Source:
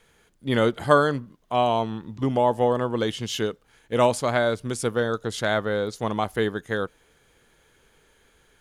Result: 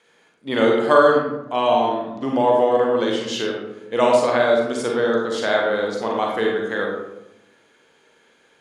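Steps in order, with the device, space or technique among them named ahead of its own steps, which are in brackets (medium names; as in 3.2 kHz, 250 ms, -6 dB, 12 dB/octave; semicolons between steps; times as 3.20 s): supermarket ceiling speaker (band-pass 270–6900 Hz; reverberation RT60 0.90 s, pre-delay 35 ms, DRR -2 dB); trim +1 dB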